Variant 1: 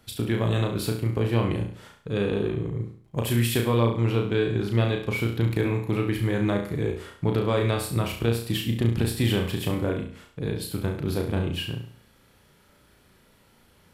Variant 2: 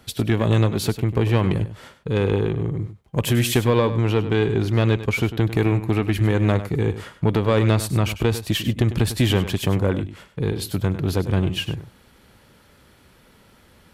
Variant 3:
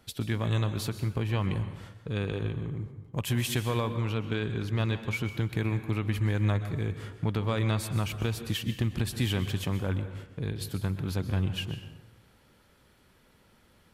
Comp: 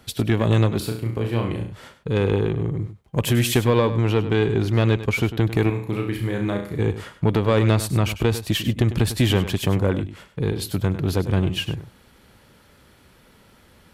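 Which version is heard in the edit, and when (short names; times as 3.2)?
2
0.8–1.72 from 1
5.7–6.79 from 1
not used: 3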